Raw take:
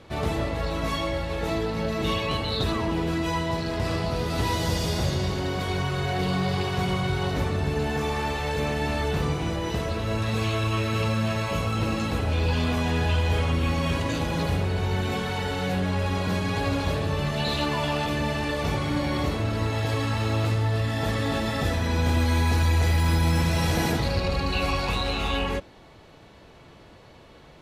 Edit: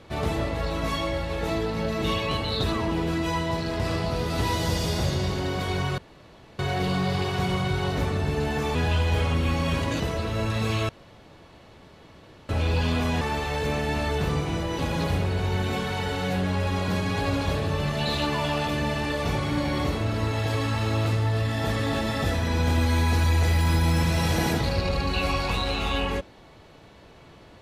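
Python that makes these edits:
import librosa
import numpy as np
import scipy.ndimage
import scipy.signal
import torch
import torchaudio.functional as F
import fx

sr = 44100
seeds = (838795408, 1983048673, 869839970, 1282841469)

y = fx.edit(x, sr, fx.insert_room_tone(at_s=5.98, length_s=0.61),
    fx.swap(start_s=8.14, length_s=1.58, other_s=12.93, other_length_s=1.25),
    fx.room_tone_fill(start_s=10.61, length_s=1.6), tone=tone)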